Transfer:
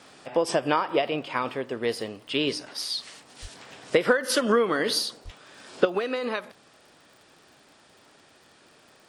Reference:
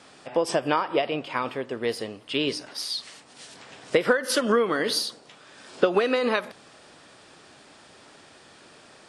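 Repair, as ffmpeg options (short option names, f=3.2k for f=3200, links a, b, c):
-filter_complex "[0:a]adeclick=t=4,asplit=3[a][b][c];[a]afade=t=out:st=3.41:d=0.02[d];[b]highpass=f=140:w=0.5412,highpass=f=140:w=1.3066,afade=t=in:st=3.41:d=0.02,afade=t=out:st=3.53:d=0.02[e];[c]afade=t=in:st=3.53:d=0.02[f];[d][e][f]amix=inputs=3:normalize=0,asplit=3[g][h][i];[g]afade=t=out:st=5.24:d=0.02[j];[h]highpass=f=140:w=0.5412,highpass=f=140:w=1.3066,afade=t=in:st=5.24:d=0.02,afade=t=out:st=5.36:d=0.02[k];[i]afade=t=in:st=5.36:d=0.02[l];[j][k][l]amix=inputs=3:normalize=0,asetnsamples=n=441:p=0,asendcmd='5.85 volume volume 5.5dB',volume=0dB"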